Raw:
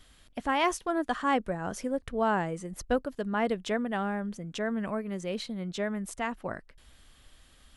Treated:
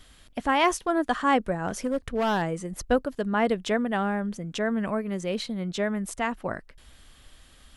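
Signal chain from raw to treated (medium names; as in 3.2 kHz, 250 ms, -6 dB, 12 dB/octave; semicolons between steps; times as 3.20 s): 1.68–2.42 s: overload inside the chain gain 25.5 dB; trim +4.5 dB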